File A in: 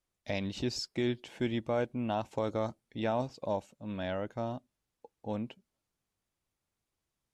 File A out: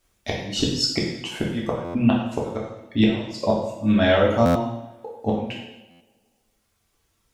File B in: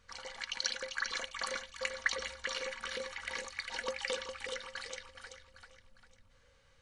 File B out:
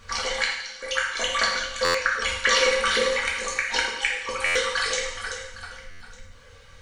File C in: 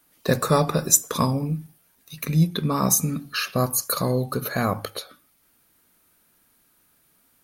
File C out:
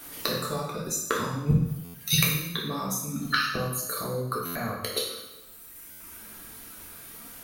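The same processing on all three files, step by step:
reverb reduction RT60 1.5 s
downward compressor 5 to 1, threshold −25 dBFS
gate with flip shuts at −24 dBFS, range −24 dB
coupled-rooms reverb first 0.87 s, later 2.4 s, from −25 dB, DRR −4 dB
buffer that repeats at 0:01.84/0:04.45/0:05.90, samples 512, times 8
normalise the peak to −6 dBFS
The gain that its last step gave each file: +15.0, +14.5, +16.0 decibels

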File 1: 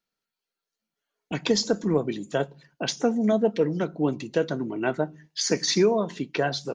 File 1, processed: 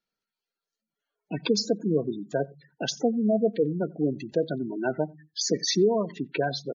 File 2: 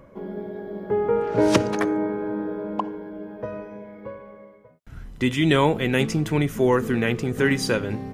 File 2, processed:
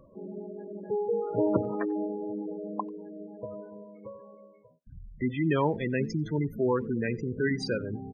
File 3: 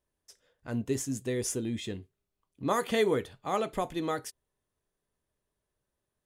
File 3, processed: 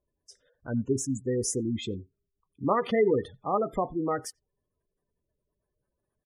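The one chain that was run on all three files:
one scale factor per block 5 bits
gate on every frequency bin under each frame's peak −15 dB strong
far-end echo of a speakerphone 90 ms, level −28 dB
normalise the peak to −12 dBFS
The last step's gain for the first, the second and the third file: −1.0, −6.5, +3.5 decibels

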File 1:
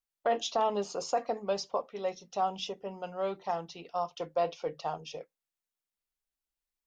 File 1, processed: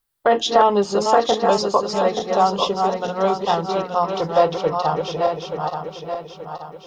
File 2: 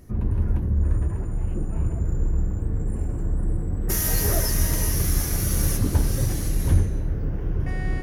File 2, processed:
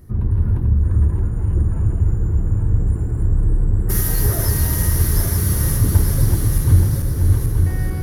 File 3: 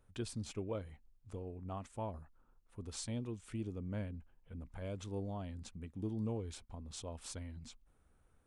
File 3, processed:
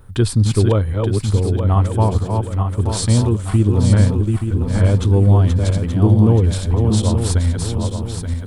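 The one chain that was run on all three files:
feedback delay that plays each chunk backwards 439 ms, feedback 65%, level −4 dB
graphic EQ with 15 bands 100 Hz +6 dB, 250 Hz −3 dB, 630 Hz −6 dB, 2,500 Hz −7 dB, 6,300 Hz −8 dB
normalise the peak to −1.5 dBFS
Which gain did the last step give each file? +16.5, +3.0, +24.5 decibels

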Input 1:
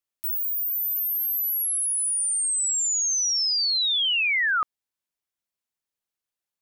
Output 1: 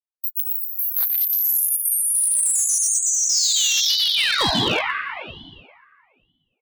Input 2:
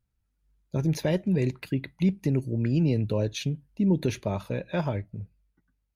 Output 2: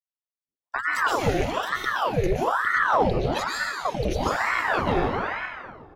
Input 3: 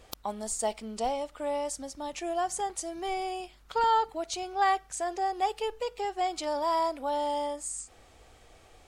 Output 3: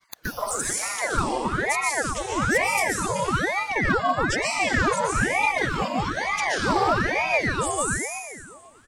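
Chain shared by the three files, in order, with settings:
time-frequency cells dropped at random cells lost 40%
downward compressor 4 to 1, threshold −27 dBFS
downward expander −54 dBFS
noise reduction from a noise print of the clip's start 8 dB
high-pass filter 120 Hz
low-shelf EQ 320 Hz −4 dB
repeating echo 118 ms, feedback 55%, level −10.5 dB
dense smooth reverb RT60 2 s, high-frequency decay 0.7×, pre-delay 115 ms, DRR −5 dB
gain into a clipping stage and back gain 20.5 dB
ring modulator whose carrier an LFO sweeps 910 Hz, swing 80%, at 1.1 Hz
normalise the peak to −12 dBFS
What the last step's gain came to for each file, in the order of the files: +8.5, +8.5, +8.5 decibels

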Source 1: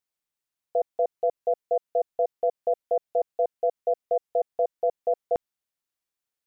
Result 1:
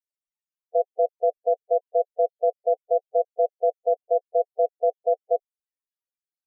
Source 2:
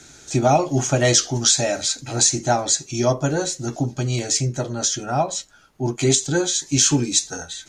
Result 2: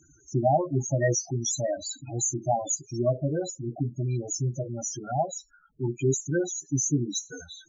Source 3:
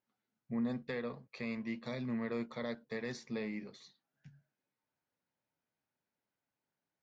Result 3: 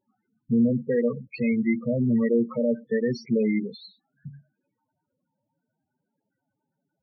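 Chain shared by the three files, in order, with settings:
spectral peaks only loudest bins 8
dynamic equaliser 250 Hz, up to −4 dB, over −40 dBFS, Q 4.3
normalise the peak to −12 dBFS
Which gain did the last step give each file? +3.0, −4.5, +17.0 decibels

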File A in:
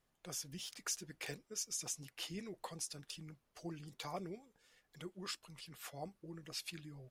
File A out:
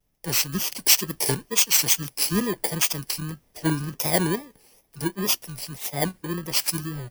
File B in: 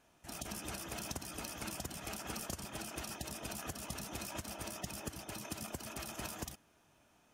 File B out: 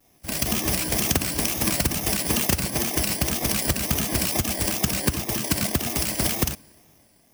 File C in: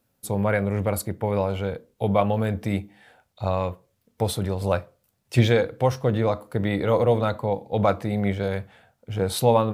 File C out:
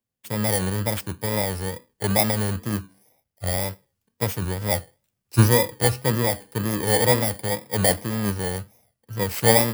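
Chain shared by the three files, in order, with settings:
samples in bit-reversed order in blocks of 32 samples
tape wow and flutter 110 cents
multiband upward and downward expander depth 40%
loudness normalisation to −23 LKFS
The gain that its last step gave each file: +21.5, +20.0, 0.0 decibels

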